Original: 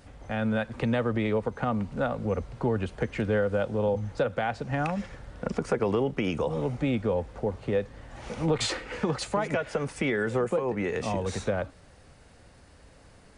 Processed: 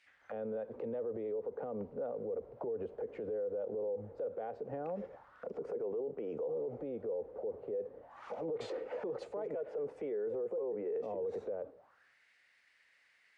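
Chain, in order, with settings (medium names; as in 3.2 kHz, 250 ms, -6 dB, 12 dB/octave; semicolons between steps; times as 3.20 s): dynamic bell 640 Hz, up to +3 dB, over -40 dBFS, Q 1.1; auto-wah 450–2300 Hz, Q 4.6, down, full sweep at -29.5 dBFS; peak limiter -38 dBFS, peak gain reduction 20.5 dB; three bands expanded up and down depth 40%; trim +6.5 dB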